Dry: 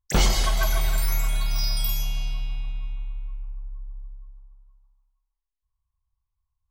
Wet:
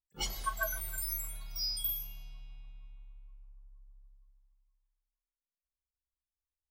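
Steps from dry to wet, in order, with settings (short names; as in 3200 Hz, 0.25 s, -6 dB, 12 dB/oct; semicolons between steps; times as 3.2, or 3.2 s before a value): spectral noise reduction 18 dB; attack slew limiter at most 410 dB/s; gain -2.5 dB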